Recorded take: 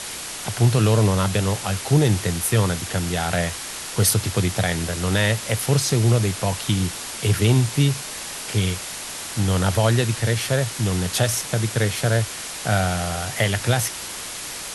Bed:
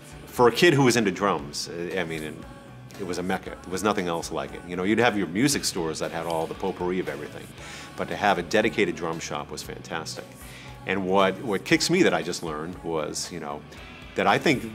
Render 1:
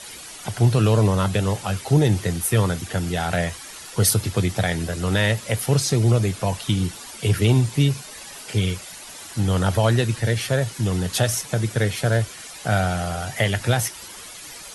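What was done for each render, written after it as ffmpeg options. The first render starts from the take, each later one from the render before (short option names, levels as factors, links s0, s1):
-af "afftdn=nr=11:nf=-33"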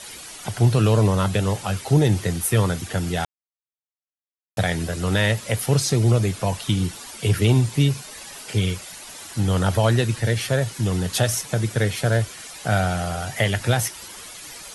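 -filter_complex "[0:a]asplit=3[s0][s1][s2];[s0]atrim=end=3.25,asetpts=PTS-STARTPTS,afade=t=out:st=3.246:d=0.004:c=hsin[s3];[s1]atrim=start=3.25:end=4.57,asetpts=PTS-STARTPTS,volume=0[s4];[s2]atrim=start=4.57,asetpts=PTS-STARTPTS,afade=t=in:d=0.004:c=hsin[s5];[s3][s4][s5]concat=n=3:v=0:a=1"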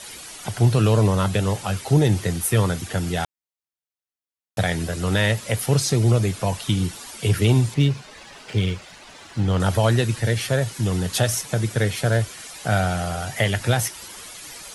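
-filter_complex "[0:a]asettb=1/sr,asplit=3[s0][s1][s2];[s0]atrim=end=7.744[s3];[s1]atrim=start=7.74:end=9.6,asetpts=PTS-STARTPTS,afade=t=in:d=0.004:c=qsin,afade=t=out:st=1.856:d=0.004:c=qsin,adynamicsmooth=sensitivity=2.5:basefreq=4200[s4];[s2]atrim=start=9.596[s5];[s3][s4]acrossfade=d=0.004:c1=hsin:c2=qsin[s6];[s6][s5]acrossfade=d=0.004:c1=qsin:c2=hsin"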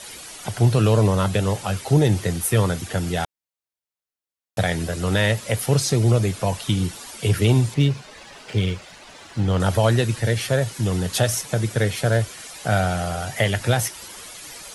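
-af "equalizer=f=550:t=o:w=0.77:g=2"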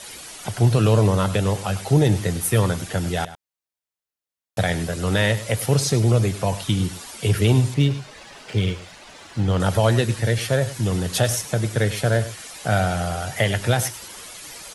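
-af "aecho=1:1:102:0.178"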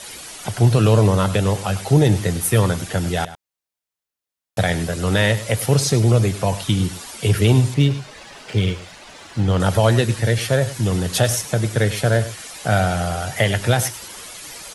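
-af "volume=1.33"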